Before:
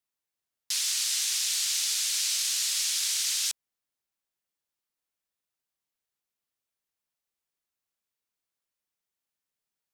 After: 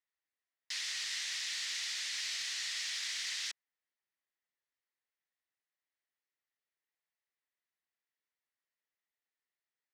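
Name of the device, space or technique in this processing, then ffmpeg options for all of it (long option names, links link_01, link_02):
intercom: -af "highpass=310,lowpass=4600,equalizer=frequency=1900:width_type=o:width=0.35:gain=11,asoftclip=type=tanh:threshold=-21.5dB,volume=-5.5dB"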